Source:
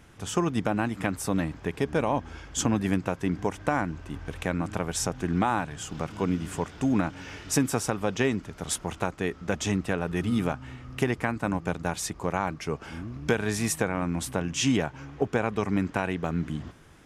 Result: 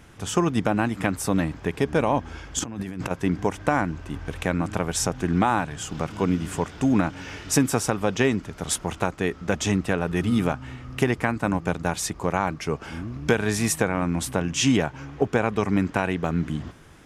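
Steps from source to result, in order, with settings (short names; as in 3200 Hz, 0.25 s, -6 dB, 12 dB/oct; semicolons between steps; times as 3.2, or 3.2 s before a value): 2.59–3.11 negative-ratio compressor -36 dBFS, ratio -1; gain +4 dB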